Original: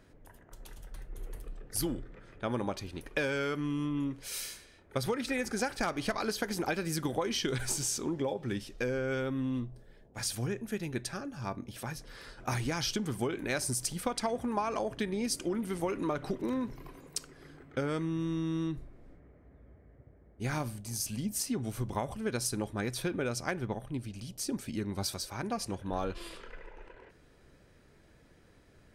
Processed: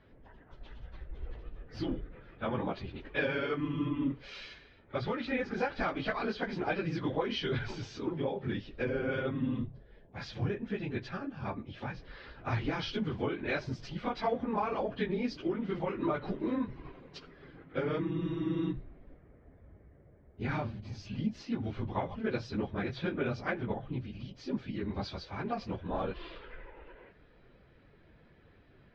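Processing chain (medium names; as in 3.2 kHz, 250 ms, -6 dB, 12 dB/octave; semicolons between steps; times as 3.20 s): phase randomisation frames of 50 ms; inverse Chebyshev low-pass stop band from 8.7 kHz, stop band 50 dB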